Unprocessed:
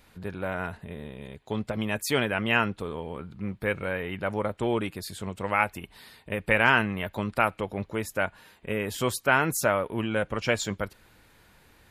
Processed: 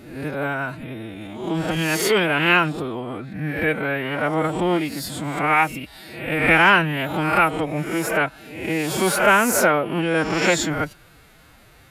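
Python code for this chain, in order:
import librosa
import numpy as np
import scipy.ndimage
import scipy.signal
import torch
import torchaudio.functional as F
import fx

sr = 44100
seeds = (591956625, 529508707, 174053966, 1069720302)

y = fx.spec_swells(x, sr, rise_s=0.77)
y = fx.pitch_keep_formants(y, sr, semitones=7.0)
y = y * 10.0 ** (5.5 / 20.0)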